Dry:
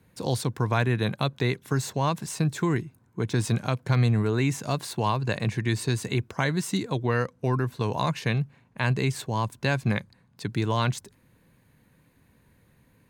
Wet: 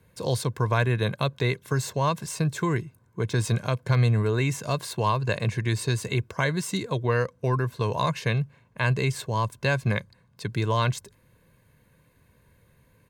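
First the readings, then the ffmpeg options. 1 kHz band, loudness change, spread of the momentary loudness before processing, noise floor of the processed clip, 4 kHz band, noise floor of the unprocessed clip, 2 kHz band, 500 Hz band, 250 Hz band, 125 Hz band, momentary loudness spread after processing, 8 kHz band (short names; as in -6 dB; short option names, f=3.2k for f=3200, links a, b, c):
+1.0 dB, +0.5 dB, 6 LU, -62 dBFS, +0.5 dB, -63 dBFS, +1.5 dB, +1.5 dB, -2.5 dB, +1.0 dB, 6 LU, +0.5 dB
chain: -af "aecho=1:1:1.9:0.43"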